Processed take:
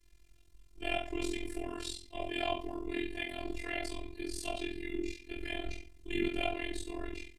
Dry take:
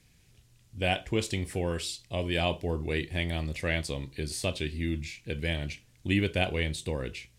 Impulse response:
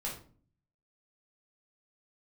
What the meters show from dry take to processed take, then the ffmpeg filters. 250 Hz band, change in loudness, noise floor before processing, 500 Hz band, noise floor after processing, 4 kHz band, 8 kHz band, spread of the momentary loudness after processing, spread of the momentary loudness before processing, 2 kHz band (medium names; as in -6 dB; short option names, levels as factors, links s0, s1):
-5.0 dB, -7.0 dB, -62 dBFS, -6.0 dB, -61 dBFS, -7.0 dB, -7.5 dB, 7 LU, 7 LU, -6.5 dB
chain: -filter_complex "[1:a]atrim=start_sample=2205[s0];[0:a][s0]afir=irnorm=-1:irlink=0,afftfilt=real='hypot(re,im)*cos(PI*b)':imag='0':win_size=512:overlap=0.75,tremolo=f=43:d=0.889"